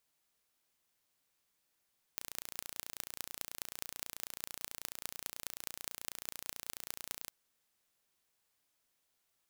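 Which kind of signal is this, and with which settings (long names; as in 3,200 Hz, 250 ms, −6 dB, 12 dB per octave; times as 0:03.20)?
impulse train 29.2 per second, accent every 6, −10 dBFS 5.12 s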